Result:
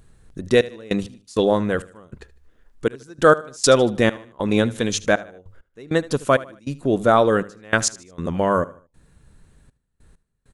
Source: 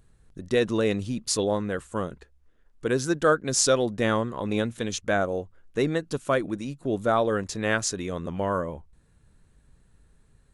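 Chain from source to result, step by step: notches 50/100 Hz; step gate "xxxx..x..xxx..x" 99 bpm -24 dB; feedback echo 76 ms, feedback 37%, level -19 dB; gain +7.5 dB

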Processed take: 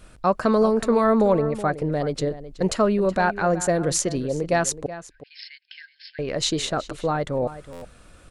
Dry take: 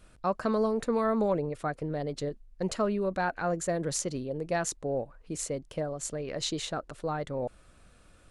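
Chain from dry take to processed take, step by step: 4.86–6.19 brick-wall FIR band-pass 1500–5400 Hz; outdoor echo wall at 64 m, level -14 dB; stuck buffer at 7.72, samples 512, times 8; gain +8.5 dB

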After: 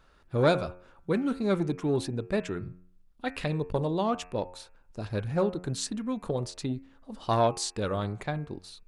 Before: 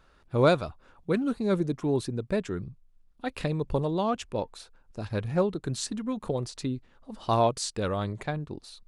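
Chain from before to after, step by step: de-hum 90.08 Hz, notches 30; 1.22–3.58 dynamic EQ 2300 Hz, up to +4 dB, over -50 dBFS, Q 0.87; core saturation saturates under 450 Hz

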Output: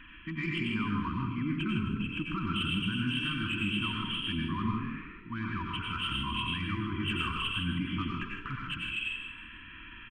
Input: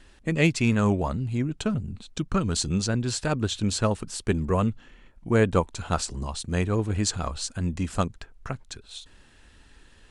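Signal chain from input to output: nonlinear frequency compression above 2300 Hz 4:1; reverse; compressor 10:1, threshold -31 dBFS, peak gain reduction 16 dB; reverse; overdrive pedal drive 15 dB, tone 1200 Hz, clips at -21 dBFS; limiter -27.5 dBFS, peak gain reduction 5 dB; FFT band-reject 340–930 Hz; on a send: frequency-shifting echo 0.157 s, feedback 34%, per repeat +42 Hz, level -9 dB; on the sum: plate-style reverb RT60 0.56 s, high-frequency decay 0.85×, pre-delay 80 ms, DRR -0.5 dB; gain +2 dB

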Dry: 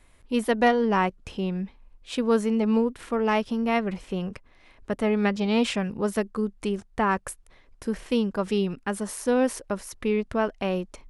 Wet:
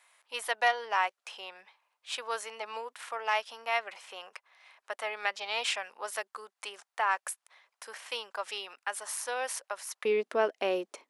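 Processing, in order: HPF 740 Hz 24 dB/oct, from 10.05 s 350 Hz; dynamic EQ 1100 Hz, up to -4 dB, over -40 dBFS, Q 1.6

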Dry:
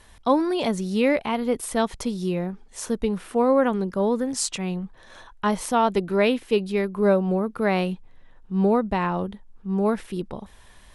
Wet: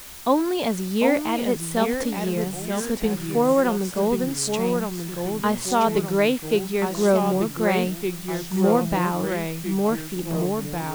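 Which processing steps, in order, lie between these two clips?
added noise white -41 dBFS; echoes that change speed 0.717 s, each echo -2 st, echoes 3, each echo -6 dB

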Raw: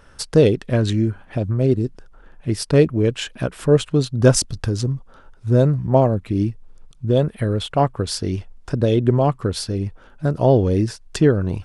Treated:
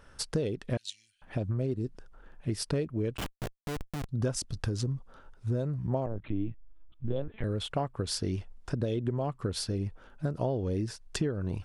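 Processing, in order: 0.77–1.22 inverse Chebyshev high-pass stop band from 1200 Hz, stop band 50 dB; compressor 10:1, threshold -20 dBFS, peak gain reduction 13.5 dB; 3.17–4.09 Schmitt trigger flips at -24.5 dBFS; 6.06–7.44 LPC vocoder at 8 kHz pitch kept; gain -6.5 dB

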